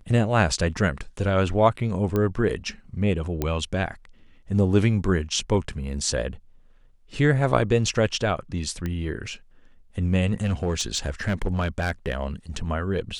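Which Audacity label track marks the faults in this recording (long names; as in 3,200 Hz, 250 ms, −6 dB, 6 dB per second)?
2.160000	2.160000	click −13 dBFS
3.420000	3.420000	click −11 dBFS
8.860000	8.860000	click −17 dBFS
10.420000	12.250000	clipping −19 dBFS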